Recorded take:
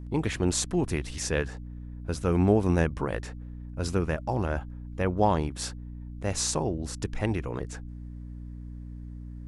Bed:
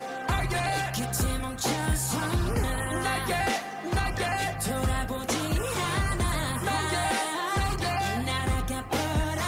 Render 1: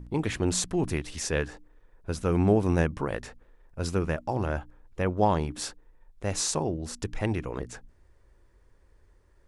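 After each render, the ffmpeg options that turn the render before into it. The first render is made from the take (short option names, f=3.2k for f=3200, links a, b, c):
-af "bandreject=f=60:t=h:w=4,bandreject=f=120:t=h:w=4,bandreject=f=180:t=h:w=4,bandreject=f=240:t=h:w=4,bandreject=f=300:t=h:w=4"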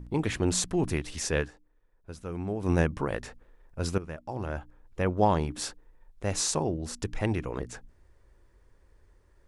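-filter_complex "[0:a]asplit=4[a][b][c][d];[a]atrim=end=1.52,asetpts=PTS-STARTPTS,afade=t=out:st=1.4:d=0.12:silence=0.281838[e];[b]atrim=start=1.52:end=2.59,asetpts=PTS-STARTPTS,volume=-11dB[f];[c]atrim=start=2.59:end=3.98,asetpts=PTS-STARTPTS,afade=t=in:d=0.12:silence=0.281838,afade=t=out:st=1.386:d=0.004:c=hsin:silence=0.211349[g];[d]atrim=start=3.98,asetpts=PTS-STARTPTS,afade=t=in:d=1.07:silence=0.211349[h];[e][f][g][h]concat=n=4:v=0:a=1"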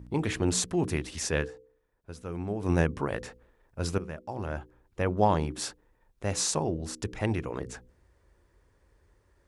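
-af "highpass=48,bandreject=f=63.13:t=h:w=4,bandreject=f=126.26:t=h:w=4,bandreject=f=189.39:t=h:w=4,bandreject=f=252.52:t=h:w=4,bandreject=f=315.65:t=h:w=4,bandreject=f=378.78:t=h:w=4,bandreject=f=441.91:t=h:w=4,bandreject=f=505.04:t=h:w=4"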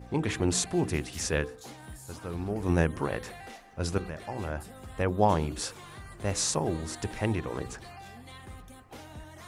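-filter_complex "[1:a]volume=-18.5dB[a];[0:a][a]amix=inputs=2:normalize=0"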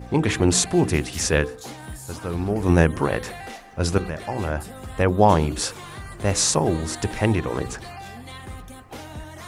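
-af "volume=8.5dB,alimiter=limit=-3dB:level=0:latency=1"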